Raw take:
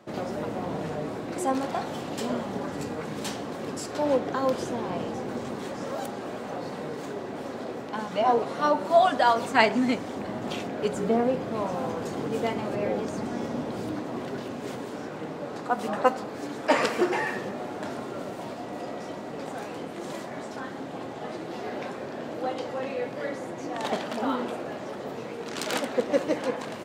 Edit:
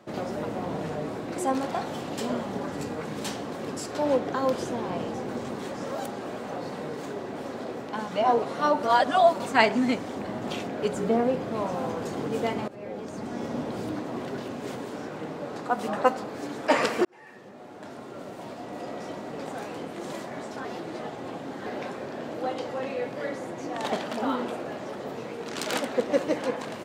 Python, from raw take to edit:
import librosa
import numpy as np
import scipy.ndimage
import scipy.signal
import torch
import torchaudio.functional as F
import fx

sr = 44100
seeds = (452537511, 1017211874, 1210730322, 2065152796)

y = fx.edit(x, sr, fx.reverse_span(start_s=8.83, length_s=0.57),
    fx.fade_in_from(start_s=12.68, length_s=0.89, floor_db=-17.0),
    fx.fade_in_span(start_s=17.05, length_s=2.01),
    fx.reverse_span(start_s=20.65, length_s=1.01), tone=tone)